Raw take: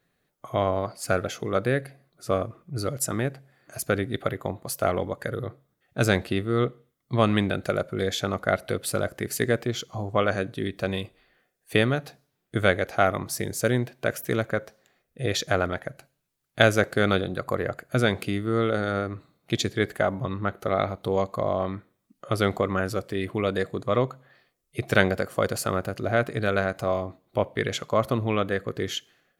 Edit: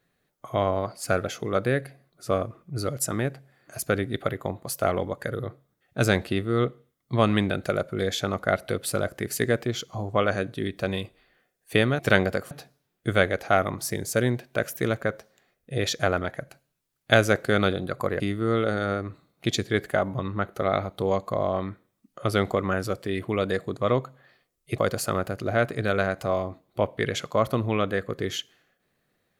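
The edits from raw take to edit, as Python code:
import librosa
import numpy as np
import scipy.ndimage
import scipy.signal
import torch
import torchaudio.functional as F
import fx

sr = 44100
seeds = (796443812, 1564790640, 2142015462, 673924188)

y = fx.edit(x, sr, fx.cut(start_s=17.68, length_s=0.58),
    fx.move(start_s=24.84, length_s=0.52, to_s=11.99), tone=tone)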